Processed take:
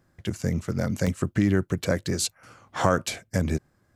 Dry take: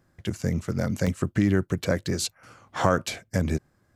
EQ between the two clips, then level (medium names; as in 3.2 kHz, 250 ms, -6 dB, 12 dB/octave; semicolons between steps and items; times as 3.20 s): dynamic bell 9 kHz, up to +4 dB, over -46 dBFS, Q 1.1; 0.0 dB